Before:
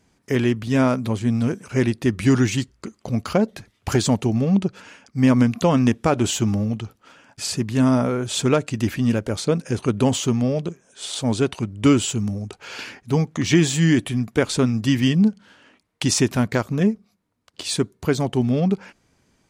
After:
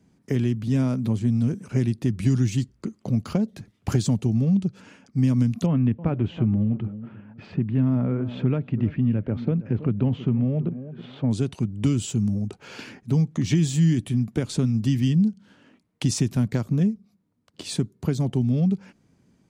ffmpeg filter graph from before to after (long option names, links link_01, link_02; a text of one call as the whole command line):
ffmpeg -i in.wav -filter_complex "[0:a]asettb=1/sr,asplit=3[link_01][link_02][link_03];[link_01]atrim=end=5.664[link_04];[link_02]atrim=start=5.66:end=11.31,asetpts=PTS-STARTPTS,afade=type=in:duration=0.004:curve=qsin,afade=type=out:start_time=5.646:duration=0.004:curve=qsin,lowpass=frequency=2600:width=0.5412,lowpass=frequency=2600:width=1.3066,asplit=2[link_05][link_06];[link_06]adelay=323,lowpass=frequency=1100:poles=1,volume=-17dB,asplit=2[link_07][link_08];[link_08]adelay=323,lowpass=frequency=1100:poles=1,volume=0.27,asplit=2[link_09][link_10];[link_10]adelay=323,lowpass=frequency=1100:poles=1,volume=0.27[link_11];[link_05][link_07][link_09][link_11]amix=inputs=4:normalize=0,atrim=end_sample=249165[link_12];[link_03]atrim=start=11.306[link_13];[link_04][link_12]acrossfade=duration=0.004:curve1=hsin:curve2=qsin[link_14];[link_14][link_13]acrossfade=duration=0.004:curve1=qsin:curve2=hsin,equalizer=frequency=180:width=0.55:gain=13.5,acrossover=split=130|3000[link_15][link_16][link_17];[link_16]acompressor=threshold=-16dB:ratio=6[link_18];[link_15][link_18][link_17]amix=inputs=3:normalize=0,volume=-7.5dB" out.wav